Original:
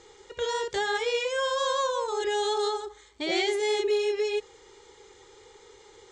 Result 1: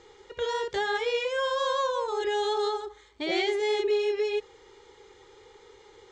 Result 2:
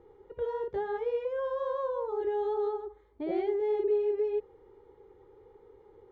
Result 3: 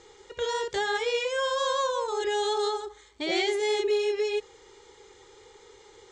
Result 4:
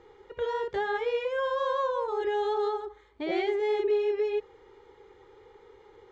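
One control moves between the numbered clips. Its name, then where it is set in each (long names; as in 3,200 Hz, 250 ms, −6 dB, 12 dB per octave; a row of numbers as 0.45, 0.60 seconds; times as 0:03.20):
Bessel low-pass filter, frequency: 4,300, 560, 11,000, 1,500 Hertz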